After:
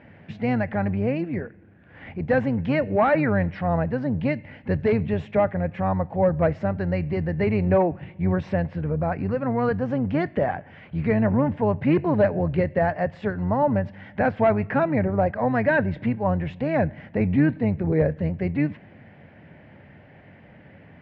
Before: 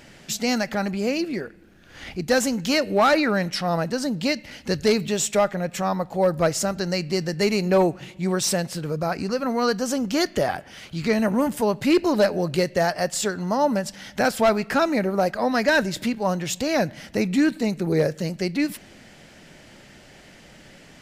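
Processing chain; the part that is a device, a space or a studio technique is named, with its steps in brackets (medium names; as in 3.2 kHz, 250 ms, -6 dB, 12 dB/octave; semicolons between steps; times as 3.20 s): sub-octave bass pedal (octave divider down 1 oct, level -6 dB; cabinet simulation 77–2100 Hz, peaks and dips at 94 Hz +7 dB, 150 Hz +4 dB, 360 Hz -4 dB, 1.3 kHz -7 dB)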